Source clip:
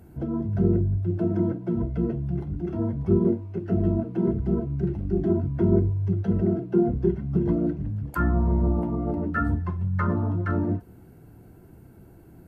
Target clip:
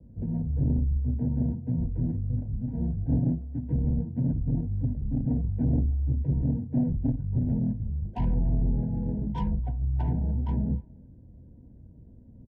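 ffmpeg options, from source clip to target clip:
-filter_complex "[0:a]acrossover=split=110|410|810[a][b][c][d];[c]acompressor=threshold=-49dB:ratio=5[e];[d]flanger=delay=18.5:depth=5.5:speed=0.22[f];[a][b][e][f]amix=inputs=4:normalize=0,asetrate=31183,aresample=44100,atempo=1.41421,adynamicsmooth=sensitivity=2.5:basefreq=700,asoftclip=type=tanh:threshold=-17dB,asuperstop=centerf=1200:order=12:qfactor=2.3,asplit=2[g][h];[h]adelay=290,highpass=300,lowpass=3.4k,asoftclip=type=hard:threshold=-26dB,volume=-24dB[i];[g][i]amix=inputs=2:normalize=0,adynamicequalizer=threshold=0.00251:dfrequency=1700:dqfactor=0.7:tfrequency=1700:tqfactor=0.7:attack=5:release=100:ratio=0.375:range=2.5:mode=cutabove:tftype=highshelf"

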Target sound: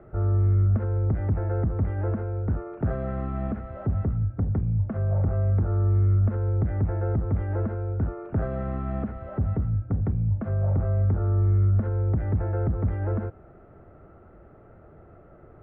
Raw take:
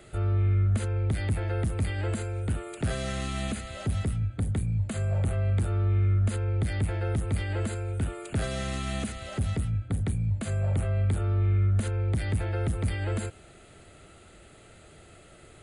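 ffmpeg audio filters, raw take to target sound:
-af "lowpass=f=1.3k:w=0.5412,lowpass=f=1.3k:w=1.3066,volume=3dB"

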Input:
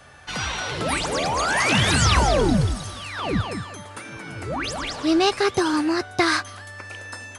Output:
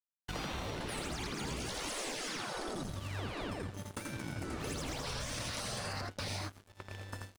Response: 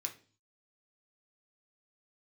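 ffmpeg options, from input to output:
-filter_complex "[0:a]asettb=1/sr,asplit=3[a][b][c];[a]atrim=end=3.774[d];[b]atrim=start=3.77:end=5.93,asetpts=PTS-STARTPTS,afade=t=in:d=0.004:c=qsin,afade=t=out:st=2.156:d=0.004:c=qsin,equalizer=f=7.6k:w=0.37:g=9.5[e];[c]atrim=start=5.926[f];[d][e]acrossfade=d=0.004:c1=hsin:c2=qsin[g];[g][f]acrossfade=d=0.004:c1=qsin:c2=hsin,agate=range=-33dB:threshold=-34dB:ratio=3:detection=peak,aecho=1:1:83:0.631,aeval=exprs='sgn(val(0))*max(abs(val(0))-0.0168,0)':c=same,afftfilt=real='re*lt(hypot(re,im),0.126)':imag='im*lt(hypot(re,im),0.126)':win_size=1024:overlap=0.75,tiltshelf=f=660:g=7.5,acompressor=threshold=-36dB:ratio=6"

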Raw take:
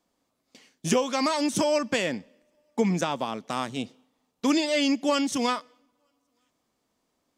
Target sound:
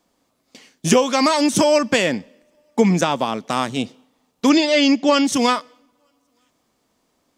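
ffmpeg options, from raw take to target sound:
-filter_complex "[0:a]asettb=1/sr,asplit=3[a][b][c];[a]atrim=end=4.494[d];[b]atrim=start=4.49:end=5.25,asetpts=PTS-STARTPTS,afade=t=in:d=0.004:c=qsin,afade=t=out:st=0.756:d=0.004:c=qsin,lowpass=f=6.5k:w=0.5412,lowpass=f=6.5k:w=1.3066[e];[c]atrim=start=5.246[f];[d][e]acrossfade=d=0.004:c1=hsin:c2=qsin[g];[g][f]acrossfade=d=0.004:c1=qsin:c2=hsin,volume=8.5dB"

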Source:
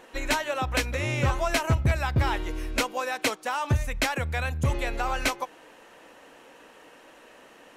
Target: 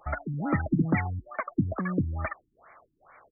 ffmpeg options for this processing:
-af "asetrate=103194,aresample=44100,afftfilt=real='re*lt(b*sr/1024,330*pow(2400/330,0.5+0.5*sin(2*PI*2.3*pts/sr)))':imag='im*lt(b*sr/1024,330*pow(2400/330,0.5+0.5*sin(2*PI*2.3*pts/sr)))':win_size=1024:overlap=0.75"

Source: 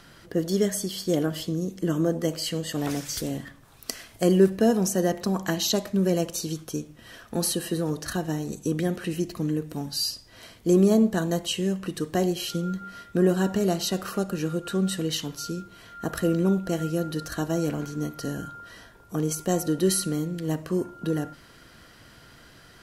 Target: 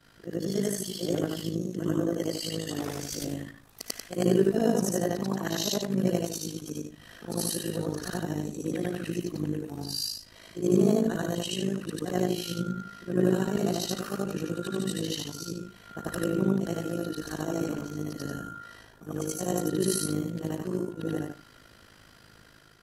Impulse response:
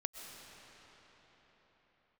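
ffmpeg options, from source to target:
-af "afftfilt=real='re':imag='-im':win_size=8192:overlap=0.75,tremolo=f=53:d=0.75,dynaudnorm=f=210:g=5:m=4dB"

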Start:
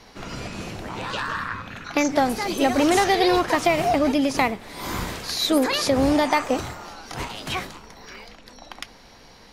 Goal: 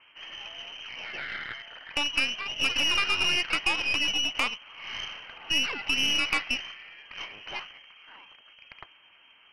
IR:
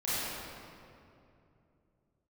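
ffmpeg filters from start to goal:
-af "lowpass=f=2.7k:t=q:w=0.5098,lowpass=f=2.7k:t=q:w=0.6013,lowpass=f=2.7k:t=q:w=0.9,lowpass=f=2.7k:t=q:w=2.563,afreqshift=-3200,aeval=exprs='0.562*(cos(1*acos(clip(val(0)/0.562,-1,1)))-cos(1*PI/2))+0.0562*(cos(3*acos(clip(val(0)/0.562,-1,1)))-cos(3*PI/2))+0.0501*(cos(6*acos(clip(val(0)/0.562,-1,1)))-cos(6*PI/2))':c=same,volume=-5dB"

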